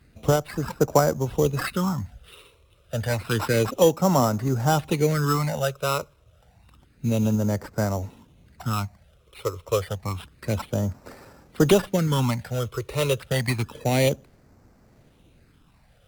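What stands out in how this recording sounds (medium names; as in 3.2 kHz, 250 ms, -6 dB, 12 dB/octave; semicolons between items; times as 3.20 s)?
phasing stages 8, 0.29 Hz, lowest notch 220–3100 Hz; aliases and images of a low sample rate 6.5 kHz, jitter 0%; Opus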